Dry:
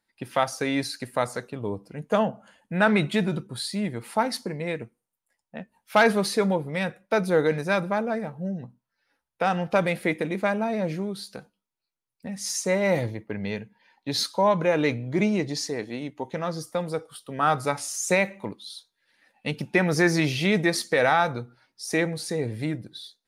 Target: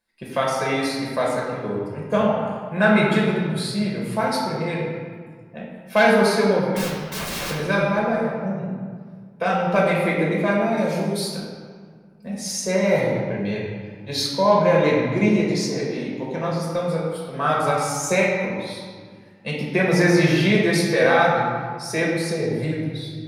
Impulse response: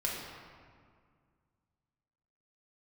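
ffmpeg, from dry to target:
-filter_complex "[0:a]asettb=1/sr,asplit=3[link_01][link_02][link_03];[link_01]atrim=end=6.764[link_04];[link_02]atrim=start=6.76:end=7.51,asetpts=PTS-STARTPTS,afade=type=in:duration=0.004:curve=qsin,afade=type=out:start_time=0.746:duration=0.004:curve=qsin,aeval=exprs='(mod(22.4*val(0)+1,2)-1)/22.4':channel_layout=same[link_05];[link_03]atrim=start=7.506[link_06];[link_04][link_05]acrossfade=duration=0.004:curve1=hsin:curve2=qsin[link_07];[link_07][link_06]acrossfade=duration=0.004:curve1=qsin:curve2=hsin,asettb=1/sr,asplit=3[link_08][link_09][link_10];[link_08]atrim=end=10.774[link_11];[link_09]atrim=start=10.77:end=11.37,asetpts=PTS-STARTPTS,afade=type=in:duration=0.004:curve=qsin,afade=type=out:start_time=0.596:duration=0.004:curve=qsin,bass=frequency=250:gain=-2,treble=frequency=4000:gain=12[link_12];[link_10]atrim=start=11.366[link_13];[link_11][link_12]acrossfade=duration=0.004:curve1=hsin:curve2=qsin[link_14];[link_14][link_13]acrossfade=duration=0.004:curve1=qsin:curve2=hsin[link_15];[1:a]atrim=start_sample=2205,asetrate=48510,aresample=44100[link_16];[link_15][link_16]afir=irnorm=-1:irlink=0"

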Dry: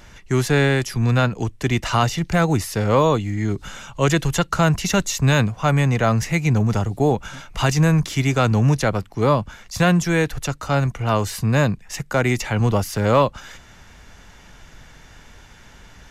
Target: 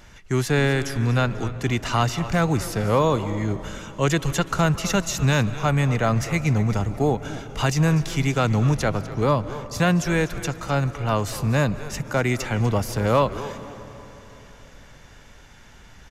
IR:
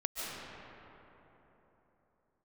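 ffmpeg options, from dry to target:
-filter_complex "[0:a]asplit=4[link_01][link_02][link_03][link_04];[link_02]adelay=247,afreqshift=-140,volume=-15dB[link_05];[link_03]adelay=494,afreqshift=-280,volume=-24.9dB[link_06];[link_04]adelay=741,afreqshift=-420,volume=-34.8dB[link_07];[link_01][link_05][link_06][link_07]amix=inputs=4:normalize=0,asplit=2[link_08][link_09];[1:a]atrim=start_sample=2205[link_10];[link_09][link_10]afir=irnorm=-1:irlink=0,volume=-17.5dB[link_11];[link_08][link_11]amix=inputs=2:normalize=0,volume=-4dB"

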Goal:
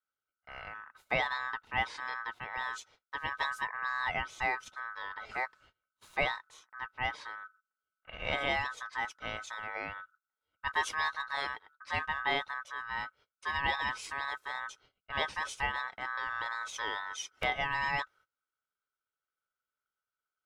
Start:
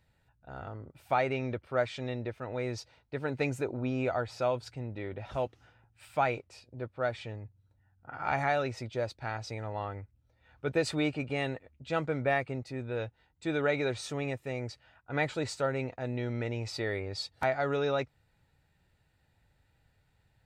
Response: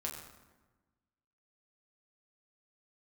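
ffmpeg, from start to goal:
-af "agate=range=-22dB:threshold=-57dB:ratio=16:detection=peak,aeval=exprs='val(0)*sin(2*PI*1400*n/s)':channel_layout=same"

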